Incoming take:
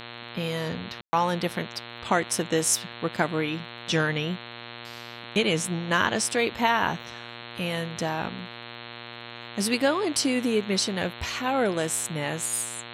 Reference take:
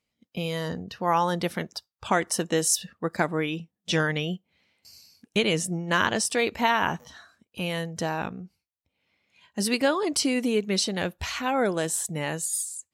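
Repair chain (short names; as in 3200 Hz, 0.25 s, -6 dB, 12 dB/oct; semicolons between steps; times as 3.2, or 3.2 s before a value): de-click; de-hum 118.5 Hz, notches 36; room tone fill 1.01–1.13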